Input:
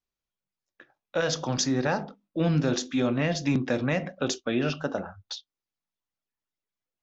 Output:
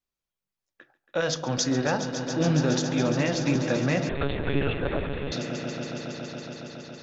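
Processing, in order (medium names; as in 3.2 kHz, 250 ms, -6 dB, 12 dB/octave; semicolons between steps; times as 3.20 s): echo with a slow build-up 139 ms, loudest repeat 5, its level -12.5 dB; 4.09–5.32 s: monotone LPC vocoder at 8 kHz 140 Hz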